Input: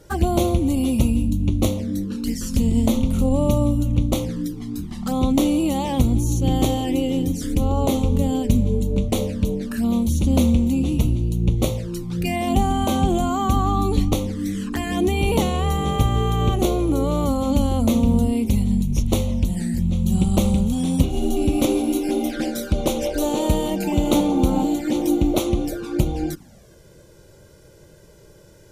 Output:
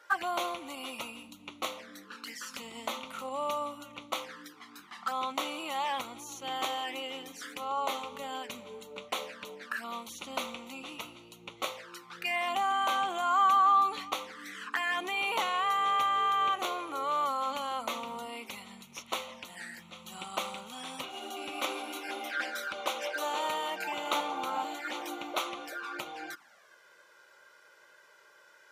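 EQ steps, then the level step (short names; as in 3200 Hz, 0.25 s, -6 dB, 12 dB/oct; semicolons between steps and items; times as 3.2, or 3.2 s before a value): resonant high-pass 1300 Hz, resonance Q 2.1; high shelf 4400 Hz -6 dB; bell 10000 Hz -9 dB 2 oct; 0.0 dB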